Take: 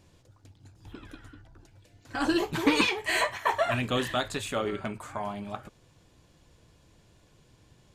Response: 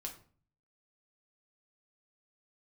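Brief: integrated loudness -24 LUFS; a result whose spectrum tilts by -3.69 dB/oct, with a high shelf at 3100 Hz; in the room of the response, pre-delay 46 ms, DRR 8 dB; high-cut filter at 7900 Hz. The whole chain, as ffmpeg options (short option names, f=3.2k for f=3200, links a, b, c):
-filter_complex "[0:a]lowpass=7.9k,highshelf=f=3.1k:g=4.5,asplit=2[a][b];[1:a]atrim=start_sample=2205,adelay=46[c];[b][c]afir=irnorm=-1:irlink=0,volume=-5.5dB[d];[a][d]amix=inputs=2:normalize=0,volume=3dB"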